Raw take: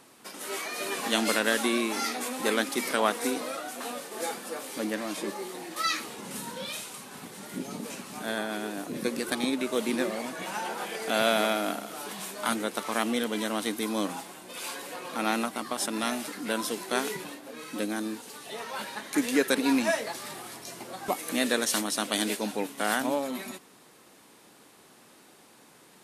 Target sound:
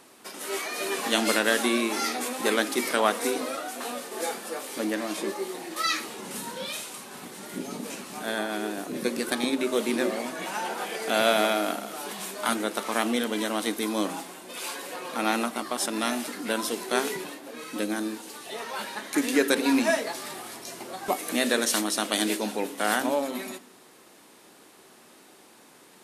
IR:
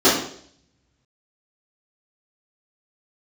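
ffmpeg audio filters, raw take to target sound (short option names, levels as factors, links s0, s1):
-filter_complex "[0:a]equalizer=f=110:w=0.81:g=-4.5,asplit=2[s0][s1];[1:a]atrim=start_sample=2205[s2];[s1][s2]afir=irnorm=-1:irlink=0,volume=0.0141[s3];[s0][s3]amix=inputs=2:normalize=0,volume=1.26"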